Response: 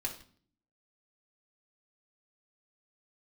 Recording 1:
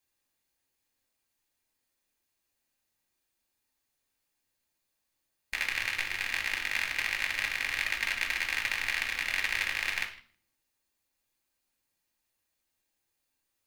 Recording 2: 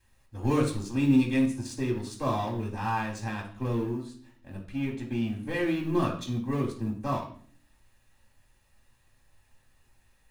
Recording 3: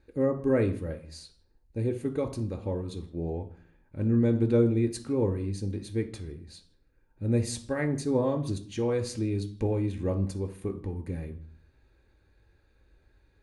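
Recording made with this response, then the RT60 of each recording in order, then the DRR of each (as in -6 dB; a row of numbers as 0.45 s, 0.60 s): 1; 0.50 s, 0.50 s, 0.50 s; -2.0 dB, -8.5 dB, 4.0 dB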